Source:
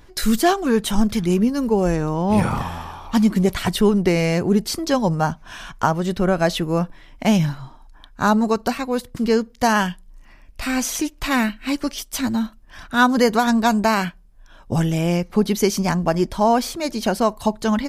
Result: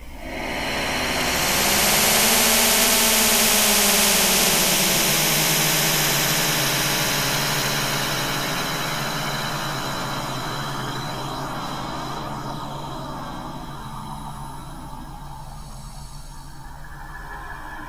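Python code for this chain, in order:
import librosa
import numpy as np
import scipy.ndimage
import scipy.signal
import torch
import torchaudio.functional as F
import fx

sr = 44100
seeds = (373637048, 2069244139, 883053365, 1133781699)

p1 = fx.rider(x, sr, range_db=10, speed_s=0.5)
p2 = x + F.gain(torch.from_numpy(p1), 2.5).numpy()
p3 = fx.paulstretch(p2, sr, seeds[0], factor=22.0, window_s=0.1, from_s=7.17)
p4 = p3 + fx.echo_diffused(p3, sr, ms=1445, feedback_pct=44, wet_db=-10.5, dry=0)
p5 = fx.chorus_voices(p4, sr, voices=4, hz=0.31, base_ms=14, depth_ms=1.9, mix_pct=55)
p6 = fx.high_shelf(p5, sr, hz=6600.0, db=8.0)
p7 = fx.spectral_comp(p6, sr, ratio=4.0)
y = F.gain(torch.from_numpy(p7), -5.0).numpy()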